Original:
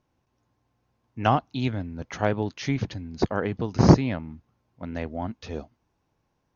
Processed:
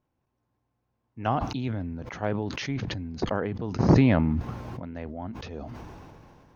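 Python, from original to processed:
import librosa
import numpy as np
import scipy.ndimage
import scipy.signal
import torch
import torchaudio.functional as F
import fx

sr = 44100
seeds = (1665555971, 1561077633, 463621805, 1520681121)

y = fx.high_shelf(x, sr, hz=3500.0, db=-10.0)
y = fx.sustainer(y, sr, db_per_s=23.0)
y = y * 10.0 ** (-5.5 / 20.0)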